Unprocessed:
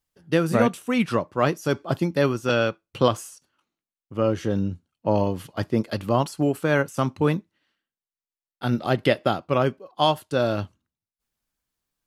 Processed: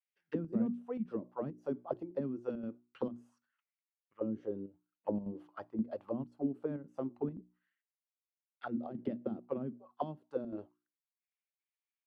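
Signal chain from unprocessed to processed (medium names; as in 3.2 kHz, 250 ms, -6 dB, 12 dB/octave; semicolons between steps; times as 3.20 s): auto-wah 220–2300 Hz, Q 4.3, down, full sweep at -17 dBFS; square tremolo 1.9 Hz, depth 60%, duty 85%; hum notches 60/120/180/240/300/360 Hz; trim -5.5 dB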